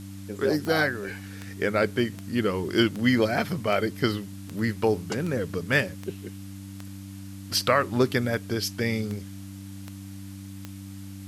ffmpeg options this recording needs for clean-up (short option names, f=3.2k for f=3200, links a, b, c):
-af "adeclick=t=4,bandreject=f=97.6:t=h:w=4,bandreject=f=195.2:t=h:w=4,bandreject=f=292.8:t=h:w=4,afwtdn=0.0028"